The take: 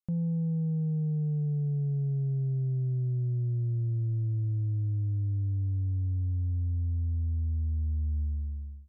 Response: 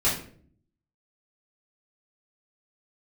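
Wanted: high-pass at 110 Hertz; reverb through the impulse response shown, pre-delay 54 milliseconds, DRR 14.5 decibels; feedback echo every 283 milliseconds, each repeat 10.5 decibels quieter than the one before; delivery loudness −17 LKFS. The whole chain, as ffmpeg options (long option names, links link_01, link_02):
-filter_complex "[0:a]highpass=110,aecho=1:1:283|566|849:0.299|0.0896|0.0269,asplit=2[link_01][link_02];[1:a]atrim=start_sample=2205,adelay=54[link_03];[link_02][link_03]afir=irnorm=-1:irlink=0,volume=-26.5dB[link_04];[link_01][link_04]amix=inputs=2:normalize=0,volume=15dB"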